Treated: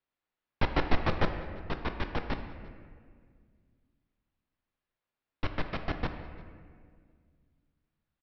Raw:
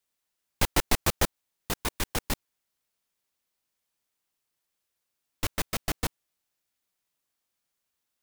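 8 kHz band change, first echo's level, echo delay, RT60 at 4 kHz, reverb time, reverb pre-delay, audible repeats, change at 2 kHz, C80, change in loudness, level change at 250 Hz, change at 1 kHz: under -30 dB, -23.5 dB, 345 ms, 1.1 s, 1.9 s, 3 ms, 1, -2.5 dB, 9.0 dB, -4.5 dB, 0.0 dB, -1.0 dB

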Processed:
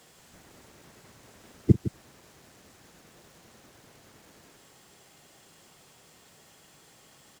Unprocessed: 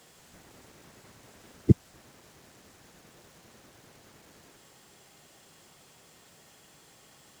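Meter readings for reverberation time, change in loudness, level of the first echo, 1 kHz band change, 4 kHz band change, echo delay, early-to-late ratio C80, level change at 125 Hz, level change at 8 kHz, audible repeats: no reverb, -0.5 dB, -19.0 dB, +0.5 dB, 0.0 dB, 42 ms, no reverb, +0.5 dB, +0.5 dB, 2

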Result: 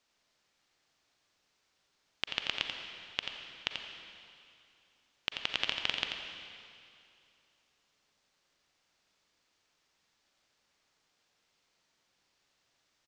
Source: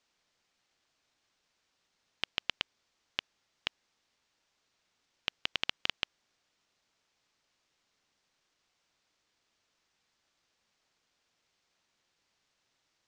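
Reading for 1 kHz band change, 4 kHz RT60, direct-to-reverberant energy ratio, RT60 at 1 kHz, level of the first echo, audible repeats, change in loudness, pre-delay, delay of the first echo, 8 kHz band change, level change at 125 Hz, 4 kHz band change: +2.0 dB, 2.3 s, 2.0 dB, 2.5 s, -7.5 dB, 1, +1.0 dB, 35 ms, 87 ms, +2.0 dB, +1.5 dB, +2.0 dB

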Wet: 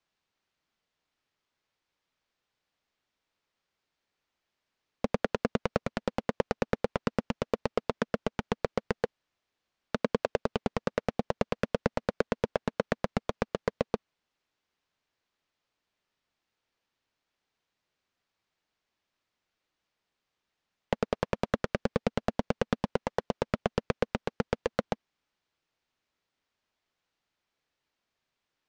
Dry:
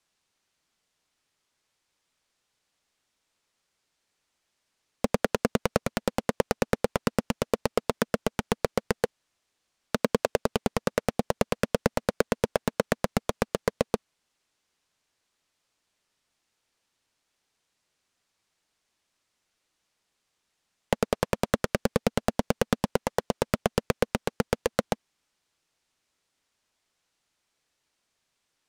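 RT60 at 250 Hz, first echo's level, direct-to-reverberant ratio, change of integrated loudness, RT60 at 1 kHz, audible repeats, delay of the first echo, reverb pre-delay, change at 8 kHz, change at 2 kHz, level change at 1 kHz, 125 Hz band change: no reverb, no echo, no reverb, -4.0 dB, no reverb, no echo, no echo, no reverb, -13.5 dB, -4.0 dB, -3.5 dB, -3.5 dB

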